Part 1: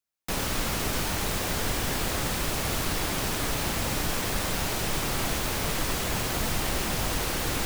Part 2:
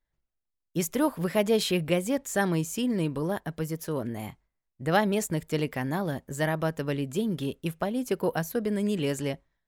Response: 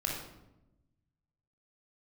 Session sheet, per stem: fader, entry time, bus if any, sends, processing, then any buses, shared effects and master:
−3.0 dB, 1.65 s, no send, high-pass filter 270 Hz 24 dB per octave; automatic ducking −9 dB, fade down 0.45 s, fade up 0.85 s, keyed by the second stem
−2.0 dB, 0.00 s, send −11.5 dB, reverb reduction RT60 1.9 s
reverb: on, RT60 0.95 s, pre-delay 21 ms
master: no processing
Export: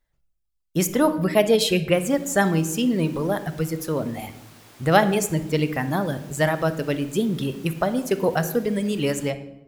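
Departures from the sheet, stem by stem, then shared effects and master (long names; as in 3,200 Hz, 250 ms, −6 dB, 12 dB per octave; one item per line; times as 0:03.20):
stem 1 −3.0 dB → −11.0 dB
stem 2 −2.0 dB → +5.0 dB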